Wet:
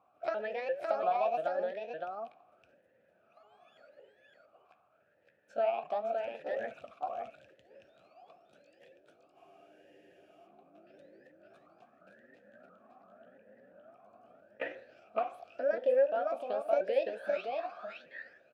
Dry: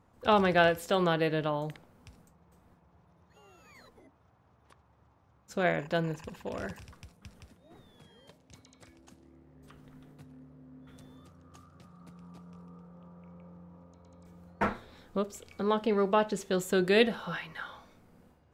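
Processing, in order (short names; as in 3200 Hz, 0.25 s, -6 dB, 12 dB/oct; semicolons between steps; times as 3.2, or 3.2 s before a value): repeated pitch sweeps +8 st, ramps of 0.343 s; dynamic EQ 740 Hz, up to +6 dB, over -40 dBFS, Q 0.87; compressor 5:1, threshold -31 dBFS, peak gain reduction 14 dB; echo 0.564 s -3.5 dB; on a send at -15.5 dB: reverb RT60 1.0 s, pre-delay 5 ms; on the sum: spectral freeze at 9.39, 1.07 s; vowel sweep a-e 0.85 Hz; gain +8.5 dB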